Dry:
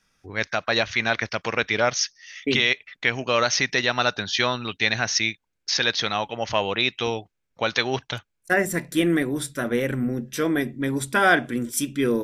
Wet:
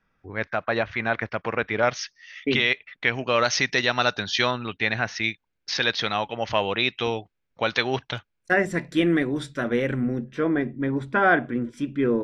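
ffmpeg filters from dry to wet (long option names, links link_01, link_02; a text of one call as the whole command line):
ffmpeg -i in.wav -af "asetnsamples=nb_out_samples=441:pad=0,asendcmd='1.83 lowpass f 3400;3.45 lowpass f 6100;4.51 lowpass f 2500;5.24 lowpass f 4200;10.24 lowpass f 1800',lowpass=1800" out.wav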